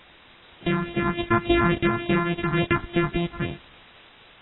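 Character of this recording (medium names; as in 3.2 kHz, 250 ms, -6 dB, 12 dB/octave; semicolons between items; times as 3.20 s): a buzz of ramps at a fixed pitch in blocks of 128 samples; phasing stages 4, 3.5 Hz, lowest notch 510–1400 Hz; a quantiser's noise floor 8-bit, dither triangular; AAC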